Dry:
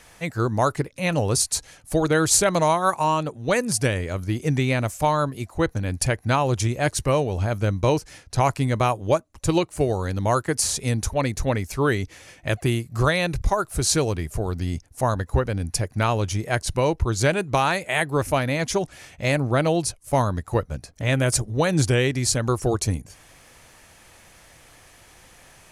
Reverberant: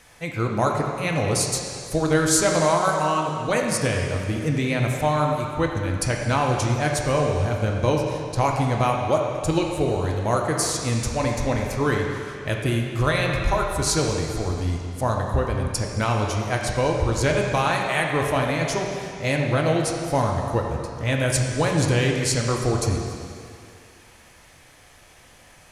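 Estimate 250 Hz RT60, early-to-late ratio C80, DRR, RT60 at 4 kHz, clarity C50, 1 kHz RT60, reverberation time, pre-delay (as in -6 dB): 2.2 s, 3.0 dB, 0.0 dB, 2.3 s, 2.0 dB, 2.4 s, 2.3 s, 3 ms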